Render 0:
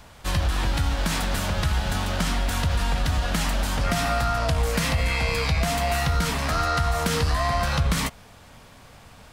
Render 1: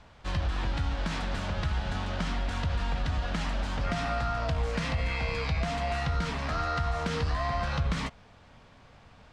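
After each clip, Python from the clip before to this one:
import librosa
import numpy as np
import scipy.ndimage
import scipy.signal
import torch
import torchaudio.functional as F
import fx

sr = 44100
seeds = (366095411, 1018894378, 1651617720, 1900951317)

y = fx.air_absorb(x, sr, metres=120.0)
y = F.gain(torch.from_numpy(y), -6.0).numpy()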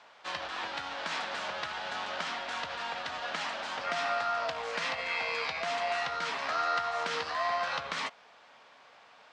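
y = fx.bandpass_edges(x, sr, low_hz=610.0, high_hz=6900.0)
y = F.gain(torch.from_numpy(y), 2.5).numpy()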